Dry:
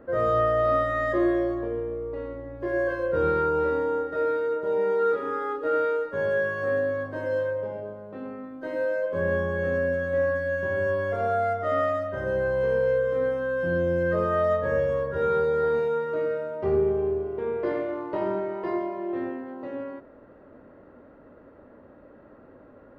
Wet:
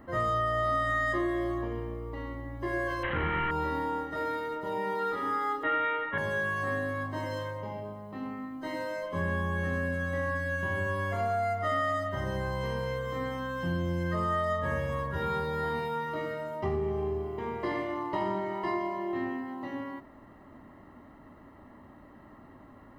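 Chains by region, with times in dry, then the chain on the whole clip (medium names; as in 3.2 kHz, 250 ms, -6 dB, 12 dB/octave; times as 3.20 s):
3.03–3.51 s: one-bit delta coder 16 kbps, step -36 dBFS + peaking EQ 1.6 kHz +11.5 dB 0.61 oct
5.63–6.18 s: steep low-pass 3.7 kHz 72 dB/octave + peaking EQ 2 kHz +10.5 dB 1.4 oct
whole clip: comb 1 ms, depth 75%; compression, threshold -25 dBFS; treble shelf 3.3 kHz +12 dB; trim -1.5 dB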